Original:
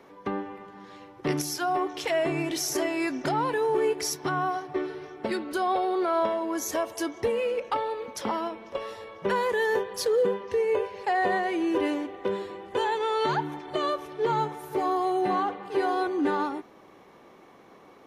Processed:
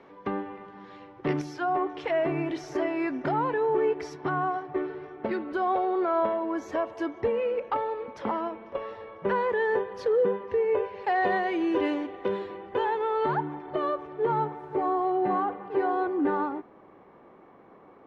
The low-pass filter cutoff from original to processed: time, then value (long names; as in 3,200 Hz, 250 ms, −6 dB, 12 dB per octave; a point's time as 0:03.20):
0:00.96 3,400 Hz
0:01.66 2,000 Hz
0:10.73 2,000 Hz
0:11.23 3,800 Hz
0:12.27 3,800 Hz
0:13.10 1,600 Hz